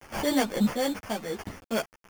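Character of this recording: aliases and images of a low sample rate 3.9 kHz, jitter 0%; random-step tremolo 4.4 Hz, depth 65%; a quantiser's noise floor 8-bit, dither none; a shimmering, thickened sound

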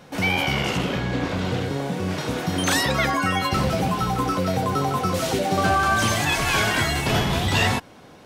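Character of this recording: noise floor -47 dBFS; spectral tilt -4.0 dB/octave

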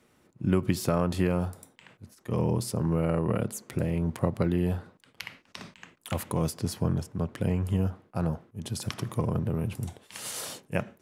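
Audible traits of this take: noise floor -65 dBFS; spectral tilt -7.0 dB/octave

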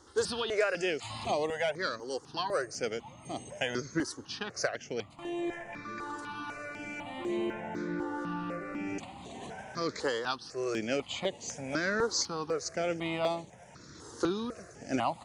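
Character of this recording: notches that jump at a steady rate 4 Hz 660–5200 Hz

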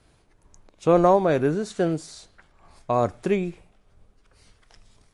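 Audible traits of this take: tremolo triangle 2.3 Hz, depth 45%; MP3

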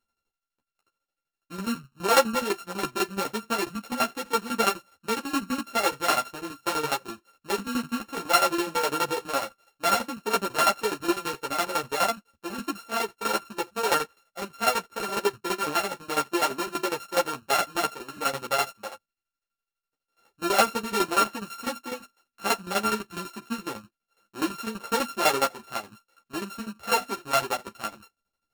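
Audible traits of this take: a buzz of ramps at a fixed pitch in blocks of 32 samples; tremolo saw down 12 Hz, depth 85%; a shimmering, thickened sound

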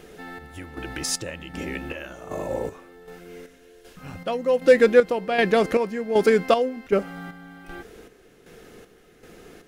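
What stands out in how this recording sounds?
chopped level 1.3 Hz, depth 60%, duty 50%

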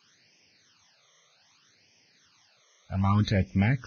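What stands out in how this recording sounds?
a quantiser's noise floor 10-bit, dither triangular; phasing stages 12, 0.64 Hz, lowest notch 260–1300 Hz; Vorbis

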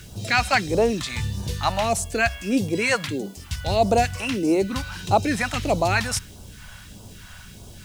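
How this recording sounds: a quantiser's noise floor 10-bit, dither triangular; phasing stages 2, 1.6 Hz, lowest notch 340–1700 Hz

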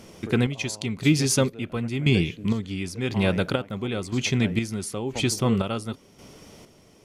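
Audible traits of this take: chopped level 0.97 Hz, depth 60%, duty 45%

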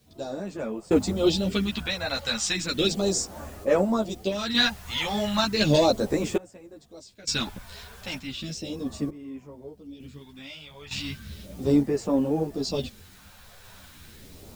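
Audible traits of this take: phasing stages 2, 0.35 Hz, lowest notch 300–3900 Hz; a quantiser's noise floor 10-bit, dither triangular; random-step tremolo 1.1 Hz, depth 95%; a shimmering, thickened sound

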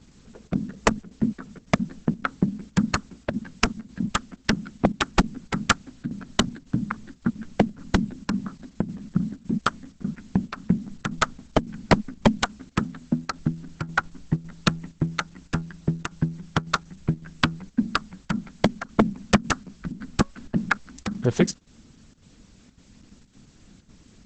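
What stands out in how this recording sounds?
a quantiser's noise floor 10-bit, dither triangular; chopped level 1.8 Hz, depth 60%, duty 85%; Opus

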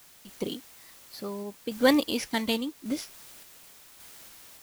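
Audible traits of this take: a quantiser's noise floor 8-bit, dither triangular; random-step tremolo

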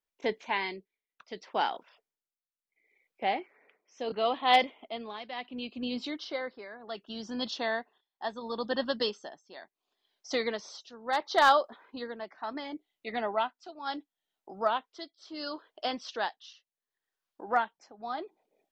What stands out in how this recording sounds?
tremolo triangle 0.71 Hz, depth 85%

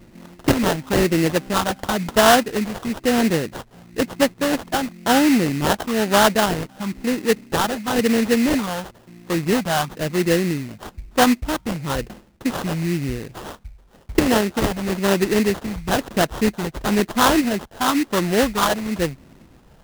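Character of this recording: phasing stages 12, 1 Hz, lowest notch 380–4200 Hz; aliases and images of a low sample rate 2.3 kHz, jitter 20%

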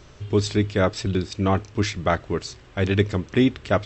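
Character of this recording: noise floor -48 dBFS; spectral tilt -5.5 dB/octave

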